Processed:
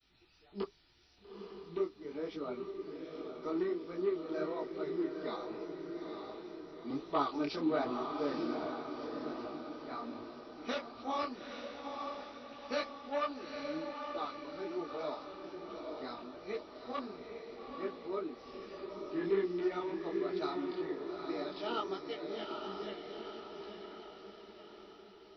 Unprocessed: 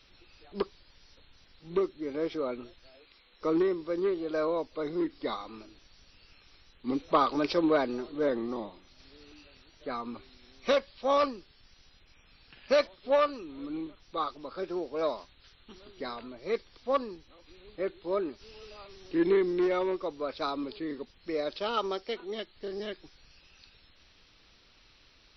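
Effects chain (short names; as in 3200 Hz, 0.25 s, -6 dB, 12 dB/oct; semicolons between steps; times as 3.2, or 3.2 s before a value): expander -57 dBFS; notch comb 540 Hz; on a send: diffused feedback echo 0.87 s, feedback 53%, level -4.5 dB; on the sum: detuned doubles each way 44 cents; gain -3 dB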